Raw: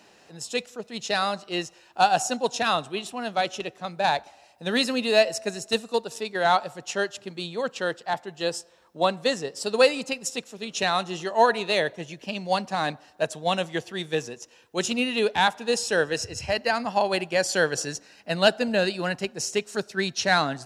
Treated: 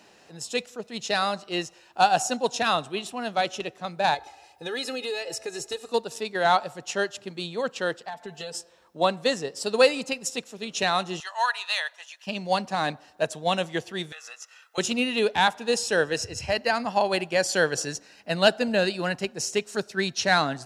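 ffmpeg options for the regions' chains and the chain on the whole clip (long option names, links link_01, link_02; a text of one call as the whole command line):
ffmpeg -i in.wav -filter_complex "[0:a]asettb=1/sr,asplit=3[link_01][link_02][link_03];[link_01]atrim=end=4.144[link_04];[link_02]atrim=start=4.14:end=5.89,asetpts=PTS-STARTPTS,afade=type=in:duration=0.004:curve=qsin,afade=type=out:start_time=1.746:duration=0.004:curve=qsin,aecho=1:1:2.4:0.88,atrim=end_sample=77175,acompressor=threshold=-29dB:ratio=4:attack=3.2:release=140:knee=1:detection=peak[link_05];[link_03]atrim=start=5.886[link_06];[link_04][link_05]acrossfade=duration=0.004:curve1=hsin:curve2=qsin[link_07];[link_07][link_06]acrossfade=duration=0.004:curve1=qsin:curve2=hsin,asettb=1/sr,asplit=3[link_08][link_09][link_10];[link_08]atrim=end=8.084[link_11];[link_09]atrim=start=8.08:end=8.55,asetpts=PTS-STARTPTS,afade=type=in:duration=0.004:curve=qsin,afade=type=out:start_time=0.466:duration=0.004:curve=qsin,aecho=1:1:4.5:0.91,atrim=end_sample=20727,acompressor=threshold=-32dB:ratio=10:attack=3.2:release=140:knee=1:detection=peak[link_12];[link_10]atrim=start=8.546[link_13];[link_11][link_12]acrossfade=duration=0.004:curve1=hsin:curve2=qsin[link_14];[link_14][link_13]acrossfade=duration=0.004:curve1=qsin:curve2=hsin,asettb=1/sr,asplit=3[link_15][link_16][link_17];[link_15]atrim=end=11.204[link_18];[link_16]atrim=start=11.2:end=12.27,asetpts=PTS-STARTPTS,afade=type=in:duration=0.004:curve=qsin,afade=type=out:start_time=1.066:duration=0.004:curve=qsin,highpass=frequency=980:width=0.5412,highpass=frequency=980:width=1.3066,bandreject=frequency=2200:width=10[link_19];[link_17]atrim=start=12.266[link_20];[link_18][link_19]acrossfade=duration=0.004:curve1=hsin:curve2=qsin[link_21];[link_21][link_20]acrossfade=duration=0.004:curve1=qsin:curve2=hsin,asettb=1/sr,asplit=3[link_22][link_23][link_24];[link_22]atrim=end=14.124[link_25];[link_23]atrim=start=14.12:end=14.78,asetpts=PTS-STARTPTS,afade=type=in:duration=0.004:curve=qsin,afade=type=out:start_time=0.656:duration=0.004:curve=qsin,highpass=frequency=1300:width_type=q:width=3.3,acompressor=threshold=-37dB:ratio=12:attack=3.2:release=140:knee=1:detection=peak,aecho=1:1:1.5:0.62,atrim=end_sample=29106[link_26];[link_24]atrim=start=14.776[link_27];[link_25][link_26]acrossfade=duration=0.004:curve1=hsin:curve2=qsin[link_28];[link_28][link_27]acrossfade=duration=0.004:curve1=qsin:curve2=hsin" out.wav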